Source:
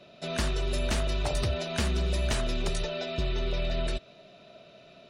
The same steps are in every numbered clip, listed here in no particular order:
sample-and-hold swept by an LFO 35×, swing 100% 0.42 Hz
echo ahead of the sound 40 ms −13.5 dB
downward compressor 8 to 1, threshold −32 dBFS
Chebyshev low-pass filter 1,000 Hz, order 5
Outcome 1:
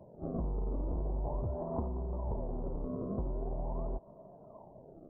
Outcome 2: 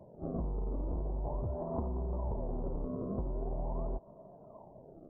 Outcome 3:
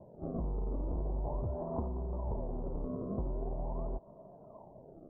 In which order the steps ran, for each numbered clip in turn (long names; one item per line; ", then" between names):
sample-and-hold swept by an LFO, then Chebyshev low-pass filter, then downward compressor, then echo ahead of the sound
sample-and-hold swept by an LFO, then Chebyshev low-pass filter, then echo ahead of the sound, then downward compressor
downward compressor, then sample-and-hold swept by an LFO, then echo ahead of the sound, then Chebyshev low-pass filter